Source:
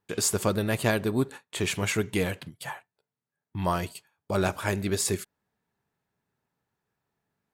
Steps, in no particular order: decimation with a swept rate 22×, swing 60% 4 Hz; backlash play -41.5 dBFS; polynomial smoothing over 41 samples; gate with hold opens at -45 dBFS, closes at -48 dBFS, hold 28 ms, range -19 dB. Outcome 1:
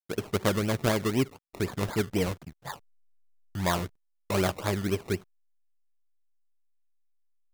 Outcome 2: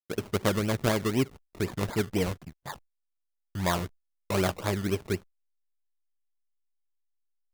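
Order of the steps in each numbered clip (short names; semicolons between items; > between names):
gate with hold > polynomial smoothing > backlash > decimation with a swept rate; polynomial smoothing > decimation with a swept rate > backlash > gate with hold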